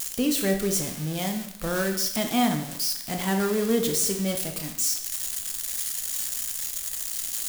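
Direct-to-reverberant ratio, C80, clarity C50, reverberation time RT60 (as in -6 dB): 4.0 dB, 10.5 dB, 8.0 dB, 0.75 s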